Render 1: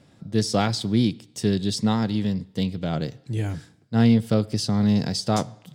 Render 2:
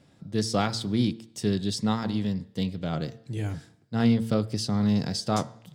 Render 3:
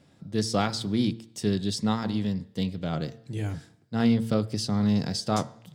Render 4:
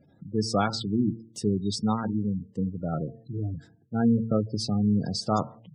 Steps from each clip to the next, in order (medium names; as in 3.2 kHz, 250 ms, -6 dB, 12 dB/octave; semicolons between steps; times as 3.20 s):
de-hum 113 Hz, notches 17; dynamic bell 1.2 kHz, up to +4 dB, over -45 dBFS, Q 3.4; trim -3.5 dB
hum notches 60/120 Hz
spectral gate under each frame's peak -20 dB strong; dynamic bell 1.3 kHz, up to +3 dB, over -40 dBFS, Q 0.81